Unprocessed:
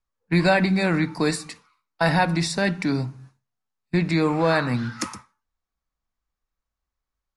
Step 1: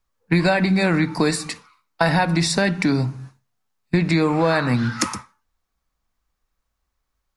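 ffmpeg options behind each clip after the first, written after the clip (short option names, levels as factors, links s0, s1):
-af "acompressor=threshold=0.0562:ratio=3,volume=2.66"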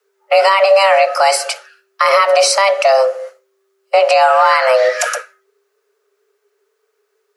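-af "equalizer=f=840:t=o:w=0.27:g=6.5,afreqshift=390,alimiter=level_in=3.16:limit=0.891:release=50:level=0:latency=1,volume=0.891"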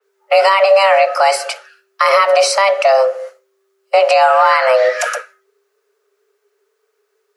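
-af "adynamicequalizer=threshold=0.0355:dfrequency=3900:dqfactor=0.7:tfrequency=3900:tqfactor=0.7:attack=5:release=100:ratio=0.375:range=3:mode=cutabove:tftype=highshelf"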